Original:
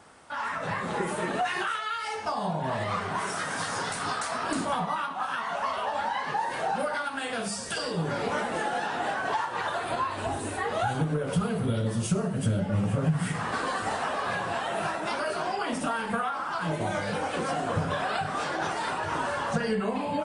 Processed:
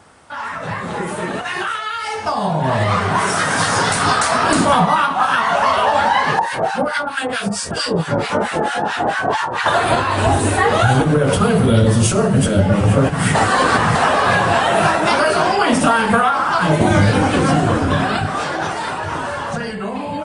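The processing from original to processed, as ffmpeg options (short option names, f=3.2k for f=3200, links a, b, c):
-filter_complex "[0:a]asettb=1/sr,asplit=3[a][b][c];[a]atrim=end=6.394[d];[b]atrim=start=6.39:end=9.66,asetpts=PTS-STARTPTS,afade=t=in:d=0.004:c=qsin,afade=t=out:st=3.266:d=0.004:c=qsin,acrossover=split=1100[e][f];[e]aeval=exprs='val(0)*(1-1/2+1/2*cos(2*PI*4.5*n/s))':c=same[g];[f]aeval=exprs='val(0)*(1-1/2-1/2*cos(2*PI*4.5*n/s))':c=same[h];[g][h]amix=inputs=2:normalize=0[i];[c]atrim=start=9.656[j];[d][i]acrossfade=d=0.004:c1=hsin:c2=qsin[k];[k][j]acrossfade=d=0.004:c1=qsin:c2=hsin,asettb=1/sr,asplit=3[l][m][n];[l]atrim=end=16.814[o];[m]atrim=start=16.81:end=18.27,asetpts=PTS-STARTPTS,afade=t=in:d=0.004:c=qsin,afade=t=out:st=1.456:d=0.004:c=qsin,lowshelf=f=380:t=q:w=1.5:g=7.5[p];[n]atrim=start=18.266[q];[o][p]acrossfade=d=0.004:c1=hsin:c2=qsin[r];[r][q]acrossfade=d=0.004:c1=qsin:c2=hsin,asplit=3[s][t][u];[s]atrim=end=13.352[v];[t]atrim=start=13.348:end=13.952,asetpts=PTS-STARTPTS,areverse[w];[u]atrim=start=13.948[x];[v][w]acrossfade=d=0.004:c1=hsin:c2=hsin[y];[y][x]acrossfade=d=0.004:c1=hsin:c2=hsin,afftfilt=real='re*lt(hypot(re,im),0.398)':imag='im*lt(hypot(re,im),0.398)':win_size=1024:overlap=0.75,equalizer=f=86:w=0.88:g=5.5,dynaudnorm=f=260:g=21:m=10dB,volume=5.5dB"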